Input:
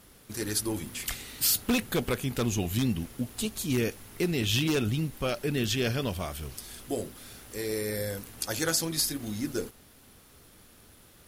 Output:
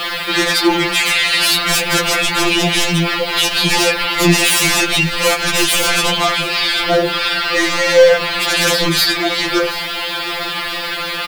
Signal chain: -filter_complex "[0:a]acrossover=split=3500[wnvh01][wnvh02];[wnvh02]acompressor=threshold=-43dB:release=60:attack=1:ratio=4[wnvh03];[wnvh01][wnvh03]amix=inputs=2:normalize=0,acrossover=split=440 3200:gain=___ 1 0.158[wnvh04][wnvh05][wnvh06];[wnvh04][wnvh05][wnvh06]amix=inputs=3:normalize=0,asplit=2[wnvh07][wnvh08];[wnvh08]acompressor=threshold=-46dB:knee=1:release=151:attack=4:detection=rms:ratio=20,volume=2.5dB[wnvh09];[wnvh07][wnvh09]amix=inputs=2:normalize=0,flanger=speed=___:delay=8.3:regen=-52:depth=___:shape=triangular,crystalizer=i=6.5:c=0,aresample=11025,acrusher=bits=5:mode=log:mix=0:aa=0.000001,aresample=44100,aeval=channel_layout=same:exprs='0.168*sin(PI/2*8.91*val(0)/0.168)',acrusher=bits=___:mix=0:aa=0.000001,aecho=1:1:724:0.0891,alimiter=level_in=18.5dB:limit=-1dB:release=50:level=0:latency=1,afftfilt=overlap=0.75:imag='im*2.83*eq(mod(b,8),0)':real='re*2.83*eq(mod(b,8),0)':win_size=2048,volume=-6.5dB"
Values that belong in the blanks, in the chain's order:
0.2, 0.59, 9.3, 6